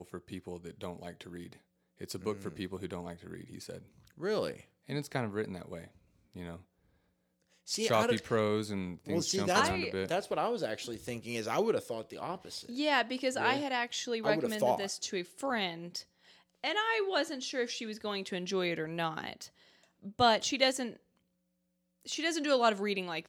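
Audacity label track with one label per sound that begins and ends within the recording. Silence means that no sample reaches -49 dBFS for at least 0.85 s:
7.670000	20.960000	sound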